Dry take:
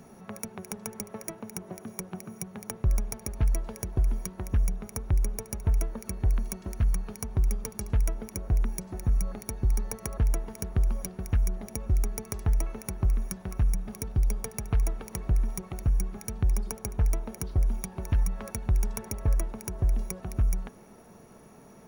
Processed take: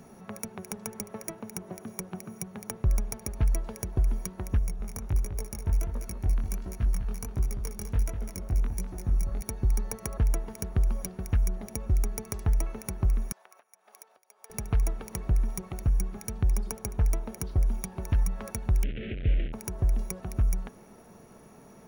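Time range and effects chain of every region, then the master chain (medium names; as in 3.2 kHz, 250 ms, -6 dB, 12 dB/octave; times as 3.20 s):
4.59–9.42 s: chorus 1.4 Hz, delay 16 ms, depth 8 ms + delay 201 ms -8.5 dB
13.32–14.50 s: compression 3:1, threshold -37 dBFS + ladder high-pass 550 Hz, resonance 25%
18.83–19.53 s: one-bit delta coder 16 kbps, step -28 dBFS + Butterworth band-stop 1 kHz, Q 0.6
whole clip: none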